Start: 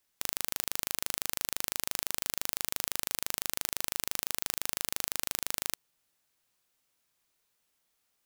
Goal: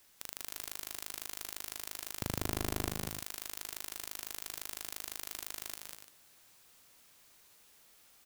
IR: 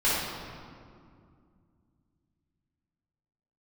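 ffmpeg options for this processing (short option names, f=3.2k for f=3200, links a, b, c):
-filter_complex "[0:a]asettb=1/sr,asplit=3[a][b][c];[a]atrim=end=2.214[d];[b]atrim=start=2.21:end=2.9,asetpts=PTS-STARTPTS,afade=t=in:d=0.004:c=qsin,afade=t=out:st=0.686:d=0.004:c=qsin,highpass=f=85:w=0.5412,highpass=f=85:w=1.3066[e];[c]atrim=start=2.896[f];[d][e]acrossfade=d=0.004:c1=hsin:c2=qsin[g];[g][f]acrossfade=d=0.004:c1=qsin:c2=hsin,aeval=exprs='(tanh(12.6*val(0)+0.7)-tanh(0.7))/12.6':c=same,asplit=2[h][i];[i]aecho=0:1:177|196|288|345:0.158|0.631|0.316|0.168[j];[h][j]amix=inputs=2:normalize=0,volume=16.5dB"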